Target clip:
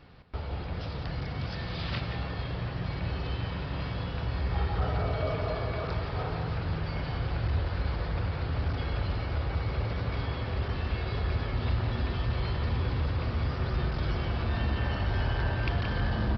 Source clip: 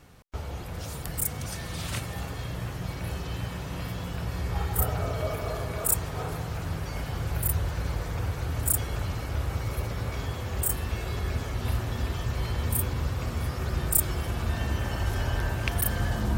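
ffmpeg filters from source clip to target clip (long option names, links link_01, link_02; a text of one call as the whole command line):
ffmpeg -i in.wav -filter_complex "[0:a]aresample=11025,asoftclip=type=tanh:threshold=-19.5dB,aresample=44100,asplit=2[link_01][link_02];[link_02]adelay=174.9,volume=-7dB,highshelf=frequency=4000:gain=-3.94[link_03];[link_01][link_03]amix=inputs=2:normalize=0" out.wav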